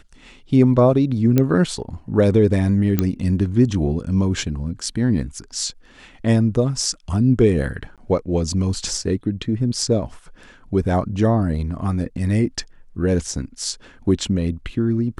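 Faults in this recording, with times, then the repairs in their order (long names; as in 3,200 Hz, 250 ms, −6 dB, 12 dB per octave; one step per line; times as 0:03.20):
0:01.38: click −5 dBFS
0:02.99: click −5 dBFS
0:07.96–0:07.98: drop-out 17 ms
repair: click removal
repair the gap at 0:07.96, 17 ms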